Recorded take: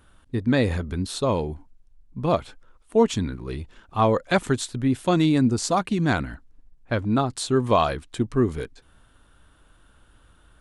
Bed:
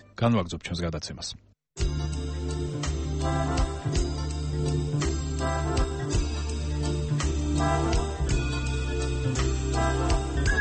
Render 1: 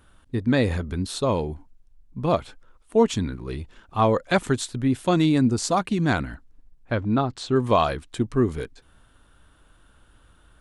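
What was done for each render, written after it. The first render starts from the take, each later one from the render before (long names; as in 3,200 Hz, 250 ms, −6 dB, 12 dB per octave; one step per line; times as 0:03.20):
0:06.92–0:07.56: high-frequency loss of the air 110 metres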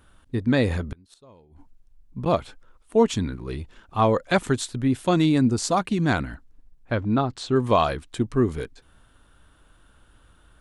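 0:00.85–0:02.26: gate with flip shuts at −22 dBFS, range −28 dB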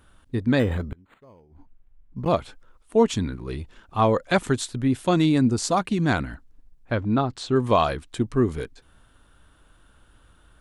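0:00.59–0:02.28: linearly interpolated sample-rate reduction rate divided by 8×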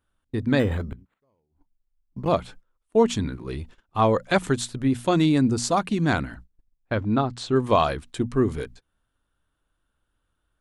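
mains-hum notches 60/120/180/240 Hz
noise gate −43 dBFS, range −19 dB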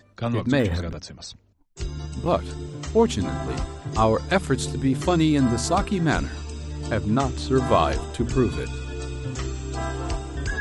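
mix in bed −3.5 dB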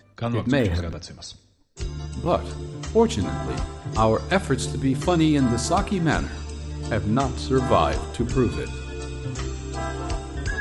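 coupled-rooms reverb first 0.69 s, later 2.2 s, from −20 dB, DRR 15 dB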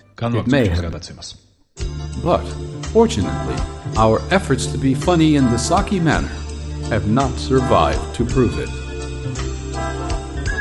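level +5.5 dB
brickwall limiter −2 dBFS, peak gain reduction 2 dB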